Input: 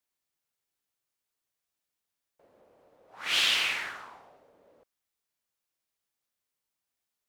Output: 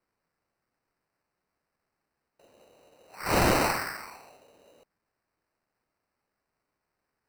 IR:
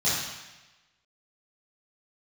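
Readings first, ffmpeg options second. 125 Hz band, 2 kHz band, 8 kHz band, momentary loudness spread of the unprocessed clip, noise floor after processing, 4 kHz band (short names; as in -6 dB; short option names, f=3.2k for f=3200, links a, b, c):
n/a, -1.0 dB, +2.5 dB, 16 LU, -84 dBFS, -9.5 dB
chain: -af "acrusher=samples=13:mix=1:aa=0.000001,volume=3dB"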